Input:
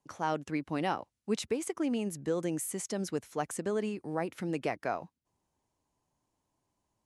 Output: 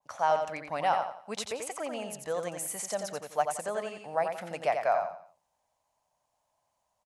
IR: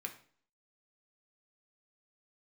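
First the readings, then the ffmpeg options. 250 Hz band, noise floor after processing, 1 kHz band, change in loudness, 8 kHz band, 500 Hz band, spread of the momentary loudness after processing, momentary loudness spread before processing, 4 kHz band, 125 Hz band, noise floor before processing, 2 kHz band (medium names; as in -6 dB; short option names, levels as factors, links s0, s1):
-11.0 dB, -79 dBFS, +7.5 dB, +2.5 dB, +2.5 dB, +3.5 dB, 8 LU, 4 LU, +2.5 dB, -8.0 dB, -83 dBFS, +3.5 dB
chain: -af "lowshelf=f=470:t=q:w=3:g=-10,aecho=1:1:88|176|264|352:0.501|0.165|0.0546|0.018,adynamicequalizer=threshold=0.00631:dfrequency=2100:dqfactor=0.7:tfrequency=2100:tqfactor=0.7:attack=5:release=100:ratio=0.375:range=2:mode=cutabove:tftype=highshelf,volume=1.26"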